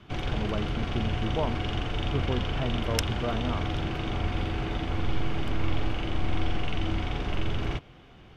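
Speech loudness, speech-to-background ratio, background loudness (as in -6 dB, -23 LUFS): -34.5 LUFS, -3.0 dB, -31.5 LUFS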